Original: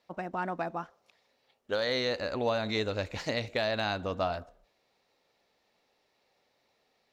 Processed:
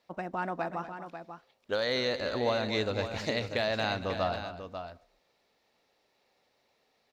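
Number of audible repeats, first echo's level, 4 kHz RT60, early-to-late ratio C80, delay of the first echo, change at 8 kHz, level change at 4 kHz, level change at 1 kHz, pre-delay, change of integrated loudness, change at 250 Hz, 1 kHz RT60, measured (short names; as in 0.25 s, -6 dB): 2, -13.0 dB, none, none, 0.237 s, n/a, +0.5 dB, +0.5 dB, none, 0.0 dB, +0.5 dB, none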